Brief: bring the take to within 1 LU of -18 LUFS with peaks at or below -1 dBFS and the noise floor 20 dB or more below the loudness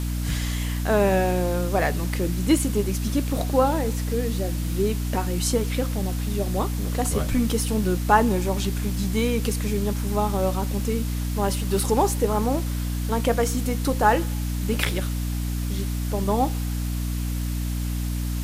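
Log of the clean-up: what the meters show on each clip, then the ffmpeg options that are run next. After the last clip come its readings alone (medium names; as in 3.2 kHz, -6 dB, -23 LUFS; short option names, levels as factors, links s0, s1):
hum 60 Hz; highest harmonic 300 Hz; hum level -24 dBFS; noise floor -27 dBFS; noise floor target -45 dBFS; loudness -24.5 LUFS; peak level -3.5 dBFS; loudness target -18.0 LUFS
-> -af "bandreject=f=60:t=h:w=4,bandreject=f=120:t=h:w=4,bandreject=f=180:t=h:w=4,bandreject=f=240:t=h:w=4,bandreject=f=300:t=h:w=4"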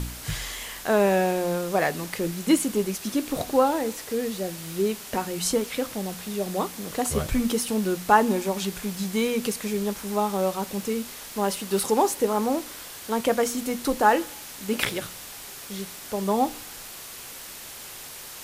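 hum not found; noise floor -41 dBFS; noise floor target -46 dBFS
-> -af "afftdn=nr=6:nf=-41"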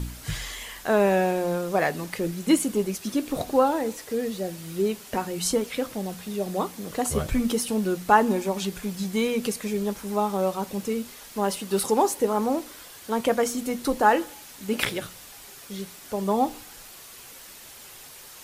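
noise floor -45 dBFS; noise floor target -46 dBFS
-> -af "afftdn=nr=6:nf=-45"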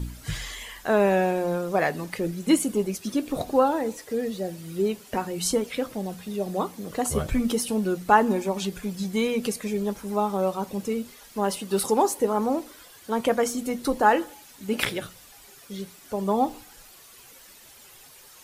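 noise floor -50 dBFS; loudness -26.0 LUFS; peak level -4.5 dBFS; loudness target -18.0 LUFS
-> -af "volume=2.51,alimiter=limit=0.891:level=0:latency=1"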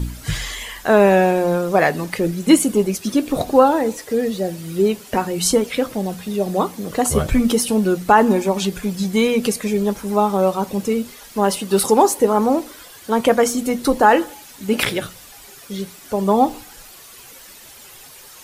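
loudness -18.5 LUFS; peak level -1.0 dBFS; noise floor -42 dBFS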